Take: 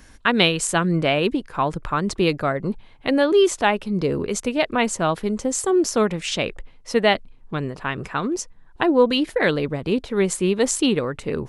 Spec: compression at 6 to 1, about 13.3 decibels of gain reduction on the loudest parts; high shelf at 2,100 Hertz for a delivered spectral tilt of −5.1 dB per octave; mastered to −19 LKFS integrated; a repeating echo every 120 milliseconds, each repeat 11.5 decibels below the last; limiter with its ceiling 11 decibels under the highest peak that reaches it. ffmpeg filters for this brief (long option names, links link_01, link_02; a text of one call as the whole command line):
ffmpeg -i in.wav -af "highshelf=frequency=2100:gain=-7.5,acompressor=threshold=-27dB:ratio=6,alimiter=limit=-23dB:level=0:latency=1,aecho=1:1:120|240|360:0.266|0.0718|0.0194,volume=14dB" out.wav